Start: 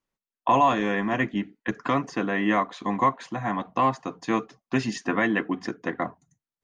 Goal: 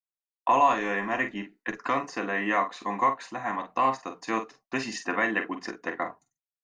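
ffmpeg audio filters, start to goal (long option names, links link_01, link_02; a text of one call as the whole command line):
ffmpeg -i in.wav -filter_complex "[0:a]agate=range=-33dB:threshold=-48dB:ratio=3:detection=peak,equalizer=frequency=110:width_type=o:width=2.8:gain=-14.5,bandreject=frequency=3300:width=6.9,asplit=2[link_01][link_02];[link_02]adelay=45,volume=-9dB[link_03];[link_01][link_03]amix=inputs=2:normalize=0" out.wav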